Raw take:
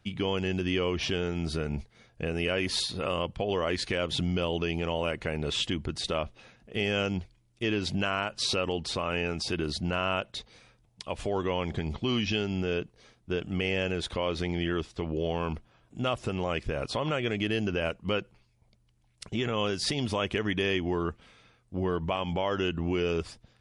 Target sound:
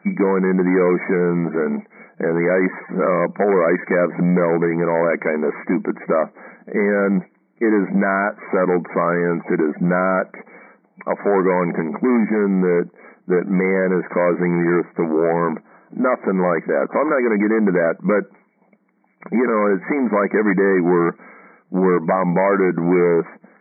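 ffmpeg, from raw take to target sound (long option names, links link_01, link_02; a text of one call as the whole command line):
ffmpeg -i in.wav -af "aeval=exprs='0.178*sin(PI/2*2.51*val(0)/0.178)':channel_layout=same,afftfilt=real='re*between(b*sr/4096,170,2300)':imag='im*between(b*sr/4096,170,2300)':win_size=4096:overlap=0.75,volume=5dB" out.wav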